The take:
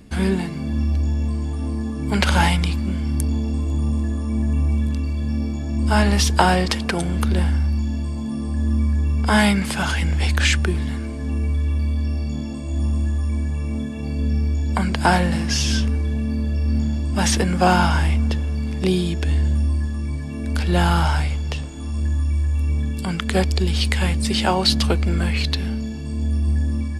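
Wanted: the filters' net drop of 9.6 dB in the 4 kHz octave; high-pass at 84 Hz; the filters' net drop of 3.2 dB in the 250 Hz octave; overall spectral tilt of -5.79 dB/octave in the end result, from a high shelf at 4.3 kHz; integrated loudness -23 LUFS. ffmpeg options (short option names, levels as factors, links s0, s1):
-af "highpass=84,equalizer=f=250:t=o:g=-4,equalizer=f=4000:t=o:g=-8.5,highshelf=f=4300:g=-7.5,volume=1.26"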